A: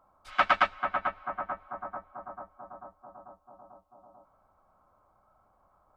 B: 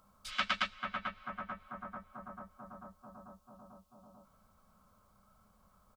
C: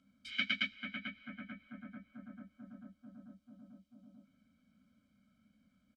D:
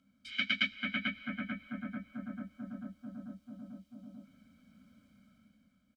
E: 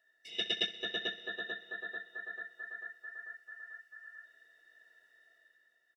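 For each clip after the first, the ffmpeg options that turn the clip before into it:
ffmpeg -i in.wav -af "firequalizer=gain_entry='entry(140,0);entry(210,8);entry(310,-12);entry(440,-4);entry(770,-14);entry(1100,-6);entry(3200,7);entry(4600,9)':delay=0.05:min_phase=1,acompressor=threshold=-52dB:ratio=1.5,volume=4dB" out.wav
ffmpeg -i in.wav -filter_complex "[0:a]asplit=3[link_01][link_02][link_03];[link_01]bandpass=frequency=270:width_type=q:width=8,volume=0dB[link_04];[link_02]bandpass=frequency=2290:width_type=q:width=8,volume=-6dB[link_05];[link_03]bandpass=frequency=3010:width_type=q:width=8,volume=-9dB[link_06];[link_04][link_05][link_06]amix=inputs=3:normalize=0,equalizer=frequency=2700:width_type=o:width=1.1:gain=-6.5,aecho=1:1:1.3:0.9,volume=12.5dB" out.wav
ffmpeg -i in.wav -af "dynaudnorm=framelen=110:gausssize=13:maxgain=9dB" out.wav
ffmpeg -i in.wav -af "afftfilt=real='real(if(between(b,1,1012),(2*floor((b-1)/92)+1)*92-b,b),0)':imag='imag(if(between(b,1,1012),(2*floor((b-1)/92)+1)*92-b,b),0)*if(between(b,1,1012),-1,1)':win_size=2048:overlap=0.75,aecho=1:1:64|128|192|256|320:0.158|0.0903|0.0515|0.0294|0.0167,volume=-2dB" out.wav

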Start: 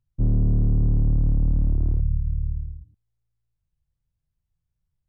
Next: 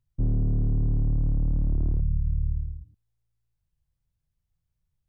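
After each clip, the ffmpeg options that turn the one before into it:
ffmpeg -i in.wav -af "alimiter=limit=-18.5dB:level=0:latency=1:release=10" out.wav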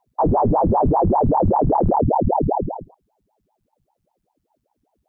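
ffmpeg -i in.wav -af "aeval=exprs='val(0)*sin(2*PI*470*n/s+470*0.9/5.1*sin(2*PI*5.1*n/s))':channel_layout=same,volume=8.5dB" out.wav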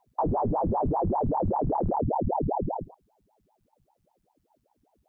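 ffmpeg -i in.wav -filter_complex "[0:a]asplit=2[link_01][link_02];[link_02]alimiter=limit=-20.5dB:level=0:latency=1:release=27,volume=1dB[link_03];[link_01][link_03]amix=inputs=2:normalize=0,acompressor=threshold=-20dB:ratio=2.5,volume=-6dB" out.wav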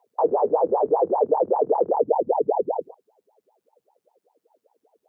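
ffmpeg -i in.wav -af "highpass=frequency=460:width_type=q:width=4.9" out.wav

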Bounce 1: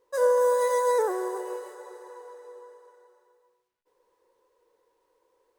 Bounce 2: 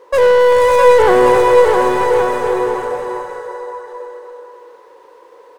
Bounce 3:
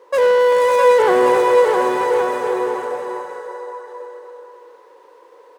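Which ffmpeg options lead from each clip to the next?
ffmpeg -i in.wav -filter_complex "[0:a]asplit=2[link_01][link_02];[link_02]highpass=frequency=720:poles=1,volume=27dB,asoftclip=type=tanh:threshold=-12.5dB[link_03];[link_01][link_03]amix=inputs=2:normalize=0,lowpass=frequency=1400:poles=1,volume=-6dB,aecho=1:1:660|1122|1445|1672|1830:0.631|0.398|0.251|0.158|0.1,volume=8.5dB" out.wav
ffmpeg -i in.wav -af "highpass=190,volume=-3.5dB" out.wav

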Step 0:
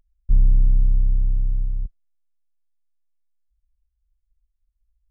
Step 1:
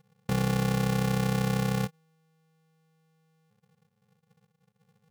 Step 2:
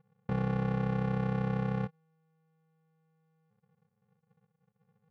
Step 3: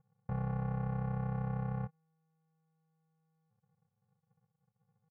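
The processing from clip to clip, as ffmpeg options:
ffmpeg -i in.wav -af "acompressor=threshold=-19dB:ratio=6,aeval=exprs='(tanh(17.8*val(0)+0.4)-tanh(0.4))/17.8':channel_layout=same,aeval=exprs='val(0)*sgn(sin(2*PI*160*n/s))':channel_layout=same" out.wav
ffmpeg -i in.wav -af "lowpass=1700,volume=-4dB" out.wav
ffmpeg -i in.wav -af "firequalizer=gain_entry='entry(100,0);entry(300,-17);entry(640,-3);entry(3600,-23)':delay=0.05:min_phase=1" out.wav

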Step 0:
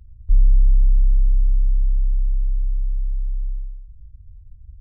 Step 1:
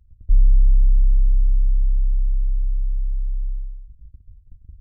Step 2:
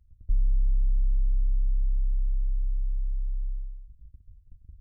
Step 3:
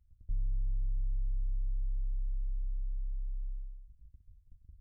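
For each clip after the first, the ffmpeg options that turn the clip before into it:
ffmpeg -i in.wav -af "agate=range=-10dB:threshold=-39dB:ratio=16:detection=peak" out.wav
ffmpeg -i in.wav -af "acompressor=threshold=-14dB:ratio=3,volume=-6dB" out.wav
ffmpeg -i in.wav -af "asoftclip=type=tanh:threshold=-19dB,volume=-7dB" out.wav

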